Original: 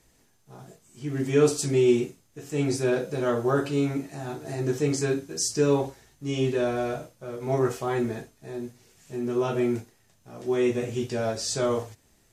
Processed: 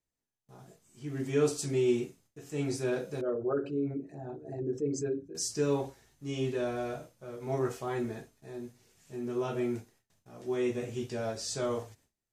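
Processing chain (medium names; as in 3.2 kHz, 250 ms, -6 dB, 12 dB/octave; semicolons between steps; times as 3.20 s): 3.21–5.35 s: resonances exaggerated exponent 2; gate with hold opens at -49 dBFS; trim -7 dB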